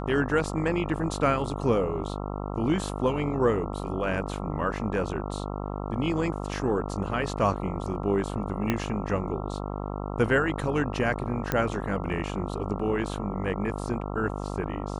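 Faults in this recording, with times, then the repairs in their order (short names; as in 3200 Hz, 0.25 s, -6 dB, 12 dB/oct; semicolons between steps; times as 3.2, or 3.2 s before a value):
buzz 50 Hz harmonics 27 -33 dBFS
8.7 pop -11 dBFS
11.52 pop -11 dBFS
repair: de-click; de-hum 50 Hz, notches 27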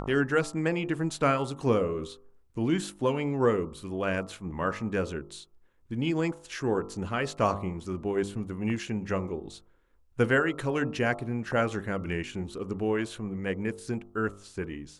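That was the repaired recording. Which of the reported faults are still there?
8.7 pop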